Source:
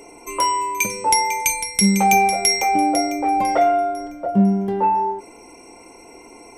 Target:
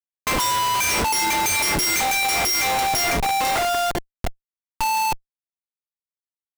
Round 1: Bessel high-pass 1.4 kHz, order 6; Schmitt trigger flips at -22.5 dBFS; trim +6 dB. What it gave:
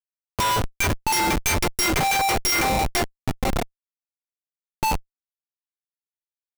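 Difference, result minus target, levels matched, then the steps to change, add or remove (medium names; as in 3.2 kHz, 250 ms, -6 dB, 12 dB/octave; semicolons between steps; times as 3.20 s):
Schmitt trigger: distortion +6 dB
change: Schmitt trigger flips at -33 dBFS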